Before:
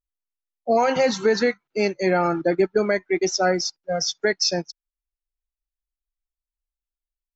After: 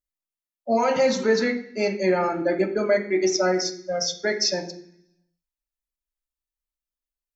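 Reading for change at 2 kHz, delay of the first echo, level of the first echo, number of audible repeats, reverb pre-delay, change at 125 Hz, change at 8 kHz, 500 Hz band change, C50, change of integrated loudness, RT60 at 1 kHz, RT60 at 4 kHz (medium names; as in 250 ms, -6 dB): -2.0 dB, no echo, no echo, no echo, 3 ms, -3.5 dB, no reading, -1.0 dB, 10.5 dB, -1.0 dB, 0.60 s, 0.80 s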